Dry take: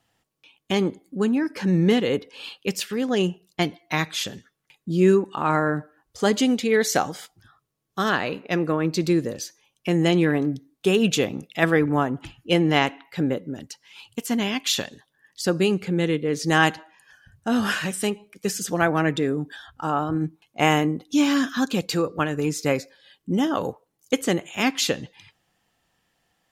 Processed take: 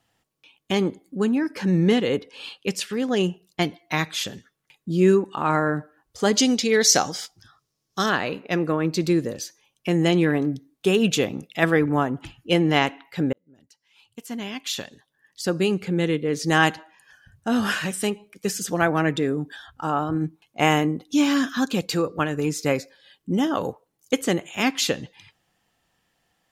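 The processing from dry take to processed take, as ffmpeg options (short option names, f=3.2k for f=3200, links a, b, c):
-filter_complex "[0:a]asettb=1/sr,asplit=3[a][b][c];[a]atrim=end=1.894[d];[b]atrim=start=1.89:end=3.05,asetpts=PTS-STARTPTS,afade=t=in:d=0.004:c=qsin,afade=t=out:st=1.156:d=0.004:c=qsin,lowpass=f=12k:w=0.5412,lowpass=f=12k:w=1.3066[e];[c]atrim=start=3.046[f];[d][e]acrossfade=d=0.004:c1=hsin:c2=qsin[g];[g][f]acrossfade=d=0.004:c1=qsin:c2=hsin,asettb=1/sr,asplit=3[h][i][j];[h]atrim=end=6.354[k];[i]atrim=start=6.35:end=8.06,asetpts=PTS-STARTPTS,afade=t=in:d=0.004:c=qsin,afade=t=out:st=1.706:d=0.004:c=qsin,equalizer=f=5.4k:w=1.5:g=13[l];[j]atrim=start=8.056[m];[k][l]acrossfade=d=0.004:c1=hsin:c2=qsin[n];[n][m]acrossfade=d=0.004:c1=qsin:c2=hsin,asplit=2[o][p];[o]atrim=end=13.33,asetpts=PTS-STARTPTS,afade=t=out:st=13.326:d=0.004:c=hsin[q];[p]atrim=start=13.33,asetpts=PTS-STARTPTS,afade=t=in:d=2.63[r];[q][r]concat=n=2:v=0:a=1"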